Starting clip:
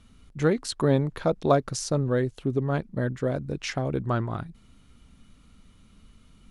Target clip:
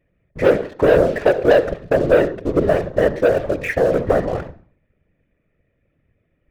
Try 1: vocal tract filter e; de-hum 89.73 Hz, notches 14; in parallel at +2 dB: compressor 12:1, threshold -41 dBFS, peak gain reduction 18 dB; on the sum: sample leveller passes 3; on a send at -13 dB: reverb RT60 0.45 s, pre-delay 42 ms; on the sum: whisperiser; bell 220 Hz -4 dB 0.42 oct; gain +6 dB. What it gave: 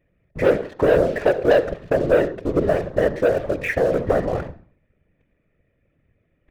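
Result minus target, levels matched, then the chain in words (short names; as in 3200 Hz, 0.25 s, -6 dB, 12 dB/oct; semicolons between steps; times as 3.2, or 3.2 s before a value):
compressor: peak gain reduction +10.5 dB
vocal tract filter e; de-hum 89.73 Hz, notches 14; in parallel at +2 dB: compressor 12:1, threshold -29.5 dBFS, peak gain reduction 7.5 dB; on the sum: sample leveller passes 3; on a send at -13 dB: reverb RT60 0.45 s, pre-delay 42 ms; on the sum: whisperiser; bell 220 Hz -4 dB 0.42 oct; gain +6 dB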